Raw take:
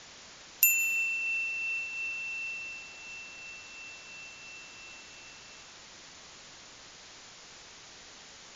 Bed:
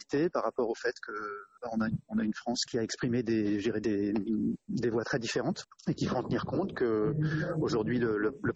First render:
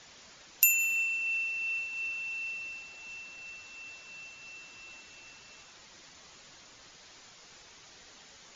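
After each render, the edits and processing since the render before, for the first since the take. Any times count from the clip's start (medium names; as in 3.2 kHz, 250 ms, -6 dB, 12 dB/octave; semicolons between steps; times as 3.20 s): noise reduction 6 dB, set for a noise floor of -51 dBFS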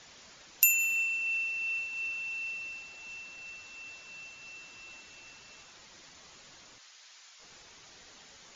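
6.78–7.40 s: Bessel high-pass 1.3 kHz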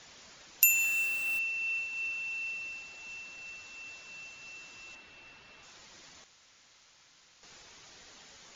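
0.67–1.39 s: send-on-delta sampling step -37 dBFS; 4.95–5.63 s: low-pass 3.5 kHz; 6.24–7.43 s: room tone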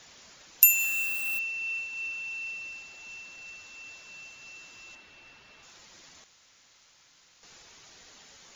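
treble shelf 12 kHz +11.5 dB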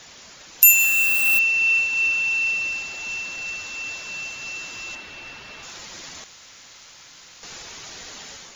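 level rider gain up to 6.5 dB; loudness maximiser +8 dB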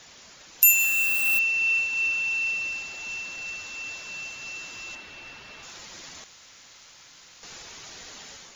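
trim -4.5 dB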